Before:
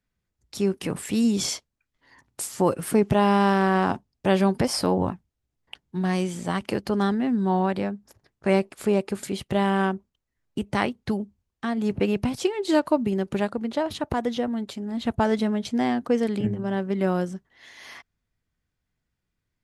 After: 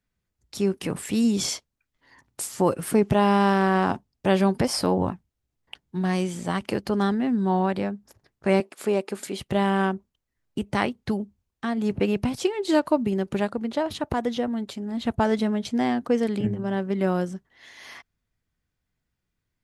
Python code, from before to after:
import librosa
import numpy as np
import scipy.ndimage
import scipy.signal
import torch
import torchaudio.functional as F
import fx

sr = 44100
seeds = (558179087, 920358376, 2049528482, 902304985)

y = fx.highpass(x, sr, hz=250.0, slope=12, at=(8.6, 9.4))